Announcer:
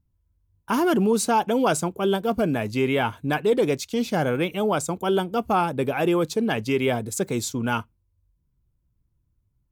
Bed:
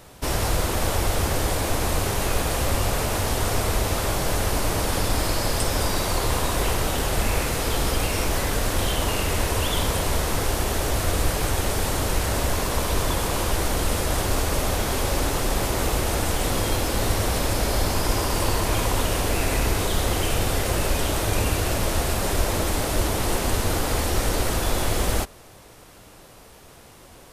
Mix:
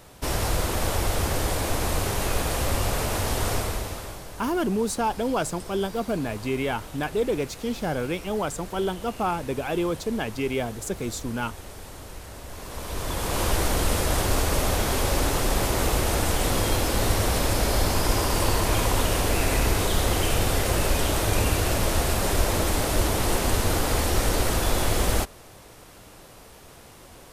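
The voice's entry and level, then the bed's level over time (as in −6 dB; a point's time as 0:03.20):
3.70 s, −4.5 dB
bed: 0:03.53 −2 dB
0:04.31 −17 dB
0:12.44 −17 dB
0:13.44 0 dB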